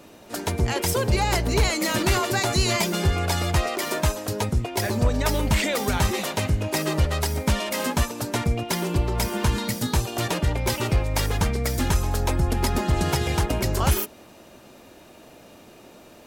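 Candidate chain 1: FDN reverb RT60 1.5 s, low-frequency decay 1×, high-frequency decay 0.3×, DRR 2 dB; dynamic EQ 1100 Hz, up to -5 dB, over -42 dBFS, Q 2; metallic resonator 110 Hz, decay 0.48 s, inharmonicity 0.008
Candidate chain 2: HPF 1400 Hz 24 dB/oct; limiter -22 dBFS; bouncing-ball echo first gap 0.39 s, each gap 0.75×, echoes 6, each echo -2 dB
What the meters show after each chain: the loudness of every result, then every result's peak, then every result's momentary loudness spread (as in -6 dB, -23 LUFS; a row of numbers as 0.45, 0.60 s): -32.5, -28.5 LUFS; -18.5, -15.5 dBFS; 6, 5 LU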